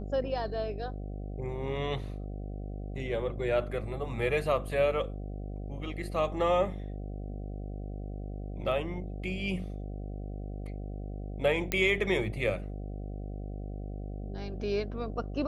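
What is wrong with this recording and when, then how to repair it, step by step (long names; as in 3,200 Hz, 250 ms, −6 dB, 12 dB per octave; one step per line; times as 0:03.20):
mains buzz 50 Hz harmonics 15 −38 dBFS
0:11.72: click −12 dBFS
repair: click removal
hum removal 50 Hz, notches 15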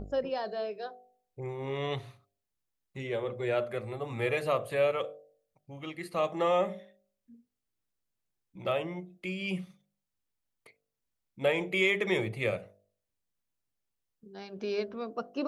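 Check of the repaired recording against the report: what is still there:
none of them is left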